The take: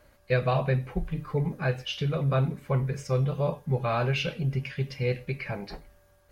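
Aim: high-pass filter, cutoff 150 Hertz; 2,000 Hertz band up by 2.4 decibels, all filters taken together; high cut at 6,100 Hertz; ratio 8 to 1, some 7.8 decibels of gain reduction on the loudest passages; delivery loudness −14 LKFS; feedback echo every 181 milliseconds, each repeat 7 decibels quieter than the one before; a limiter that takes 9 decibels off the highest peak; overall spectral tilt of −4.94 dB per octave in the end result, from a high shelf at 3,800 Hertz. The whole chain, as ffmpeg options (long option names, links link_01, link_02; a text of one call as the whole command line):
ffmpeg -i in.wav -af "highpass=150,lowpass=6100,equalizer=frequency=2000:width_type=o:gain=5.5,highshelf=frequency=3800:gain=-7.5,acompressor=threshold=-29dB:ratio=8,alimiter=level_in=5dB:limit=-24dB:level=0:latency=1,volume=-5dB,aecho=1:1:181|362|543|724|905:0.447|0.201|0.0905|0.0407|0.0183,volume=23.5dB" out.wav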